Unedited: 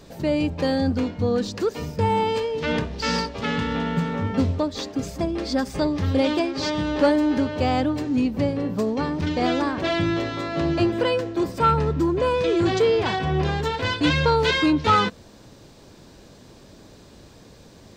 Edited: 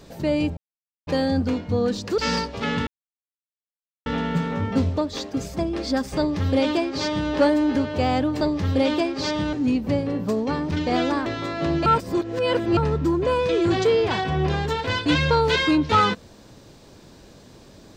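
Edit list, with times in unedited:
0:00.57: splice in silence 0.50 s
0:01.68–0:02.99: remove
0:03.68: splice in silence 1.19 s
0:05.80–0:06.92: duplicate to 0:08.03
0:09.76–0:10.21: remove
0:10.81–0:11.72: reverse

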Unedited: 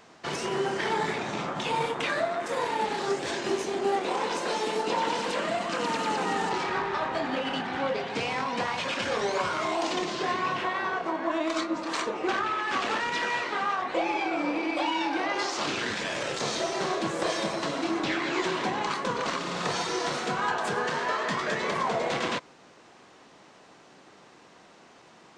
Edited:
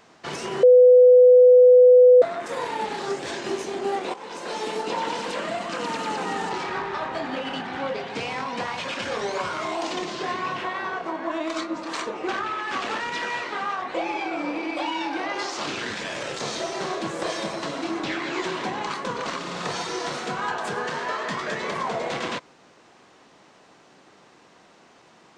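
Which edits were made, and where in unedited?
0:00.63–0:02.22: beep over 499 Hz −8.5 dBFS
0:04.14–0:04.64: fade in, from −14.5 dB

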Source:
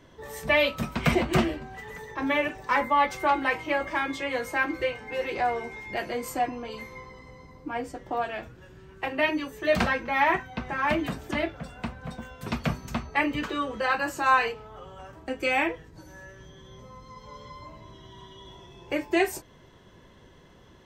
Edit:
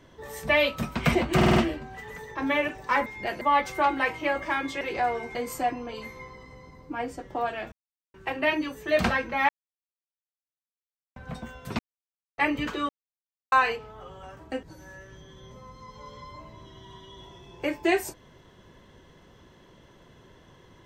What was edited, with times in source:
0:01.36: stutter 0.05 s, 5 plays
0:04.26–0:05.22: remove
0:05.76–0:06.11: move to 0:02.86
0:08.48–0:08.90: silence
0:10.25–0:11.92: silence
0:12.55–0:13.14: silence
0:13.65–0:14.28: silence
0:15.39–0:15.91: remove

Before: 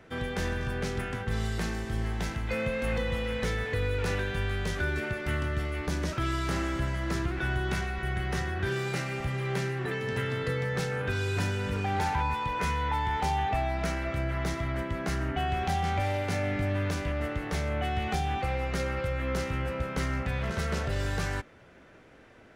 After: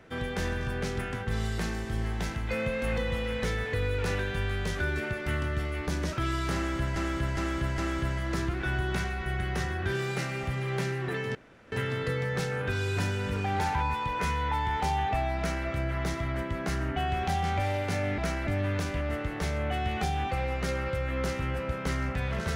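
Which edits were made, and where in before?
0:06.55–0:06.96: repeat, 4 plays
0:10.12: splice in room tone 0.37 s
0:13.78–0:14.07: duplicate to 0:16.58

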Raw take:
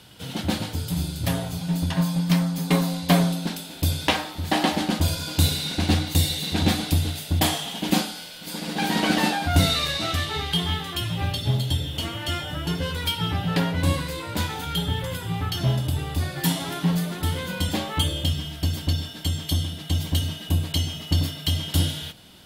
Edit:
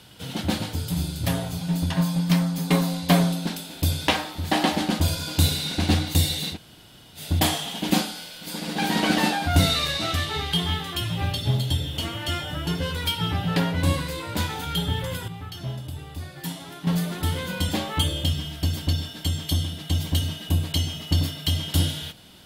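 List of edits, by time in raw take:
0:06.53–0:07.19: fill with room tone, crossfade 0.10 s
0:15.28–0:16.87: clip gain −9.5 dB

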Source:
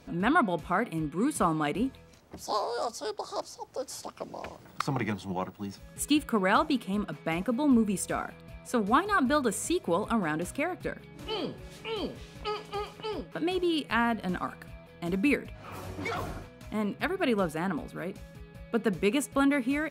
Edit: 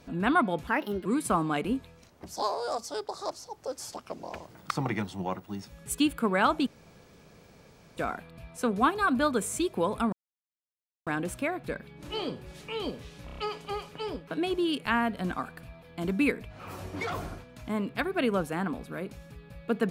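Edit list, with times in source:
0:00.67–0:01.16: play speed 127%
0:06.77–0:08.07: fill with room tone
0:10.23: splice in silence 0.94 s
0:12.42: stutter 0.03 s, 5 plays

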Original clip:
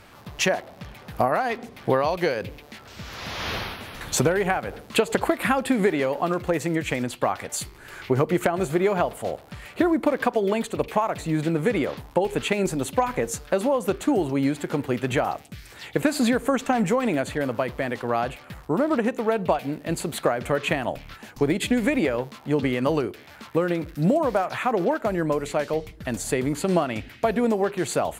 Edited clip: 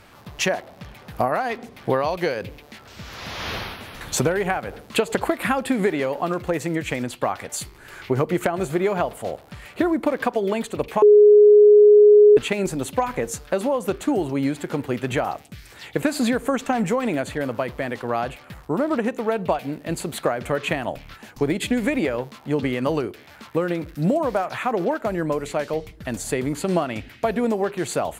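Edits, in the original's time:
0:11.02–0:12.37: beep over 417 Hz −7.5 dBFS

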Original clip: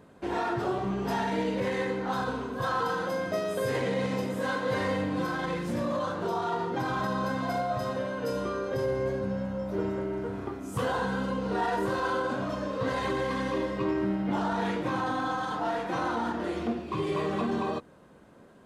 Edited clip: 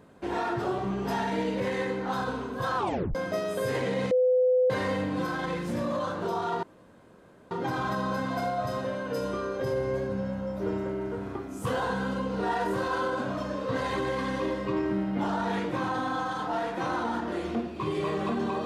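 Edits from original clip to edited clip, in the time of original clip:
0:02.77: tape stop 0.38 s
0:04.11–0:04.70: beep over 506 Hz −19 dBFS
0:06.63: splice in room tone 0.88 s

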